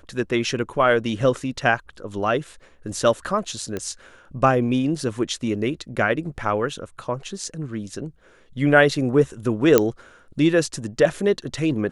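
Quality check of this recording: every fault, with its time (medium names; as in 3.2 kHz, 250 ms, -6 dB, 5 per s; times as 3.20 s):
3.77 s: pop -15 dBFS
9.78 s: pop -1 dBFS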